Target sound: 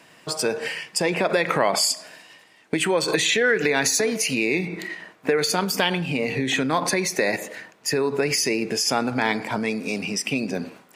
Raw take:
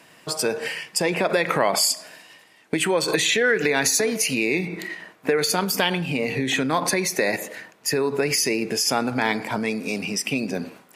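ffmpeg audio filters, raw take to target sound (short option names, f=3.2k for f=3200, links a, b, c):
-af "equalizer=f=12k:w=1.8:g=-6.5"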